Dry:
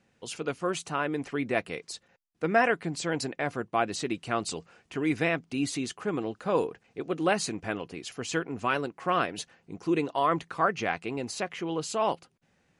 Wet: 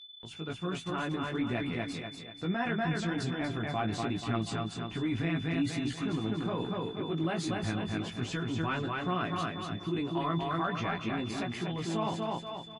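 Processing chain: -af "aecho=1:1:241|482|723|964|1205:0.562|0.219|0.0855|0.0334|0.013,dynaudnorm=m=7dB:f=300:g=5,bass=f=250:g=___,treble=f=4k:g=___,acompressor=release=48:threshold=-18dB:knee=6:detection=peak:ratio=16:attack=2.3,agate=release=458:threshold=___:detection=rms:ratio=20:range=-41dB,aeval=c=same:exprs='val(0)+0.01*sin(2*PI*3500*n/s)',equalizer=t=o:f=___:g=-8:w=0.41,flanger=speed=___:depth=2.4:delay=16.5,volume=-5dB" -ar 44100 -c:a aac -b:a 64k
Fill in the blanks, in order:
10, -10, -42dB, 500, 1.2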